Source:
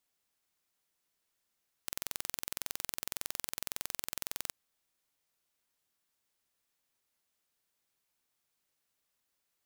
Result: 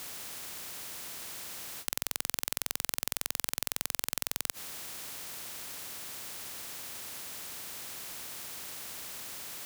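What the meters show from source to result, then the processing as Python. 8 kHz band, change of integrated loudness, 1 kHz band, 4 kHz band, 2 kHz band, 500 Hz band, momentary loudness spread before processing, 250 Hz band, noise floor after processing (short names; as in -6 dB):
+7.5 dB, +2.5 dB, +7.5 dB, +7.5 dB, +7.5 dB, +7.5 dB, 3 LU, +7.5 dB, -70 dBFS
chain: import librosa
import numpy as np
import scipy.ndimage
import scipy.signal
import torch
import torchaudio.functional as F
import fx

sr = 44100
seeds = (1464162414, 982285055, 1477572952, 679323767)

p1 = scipy.signal.sosfilt(scipy.signal.butter(2, 120.0, 'highpass', fs=sr, output='sos'), x)
p2 = fx.over_compress(p1, sr, threshold_db=-47.0, ratio=-1.0)
p3 = p1 + (p2 * 10.0 ** (-1.5 / 20.0))
p4 = fx.spectral_comp(p3, sr, ratio=10.0)
y = p4 * 10.0 ** (4.0 / 20.0)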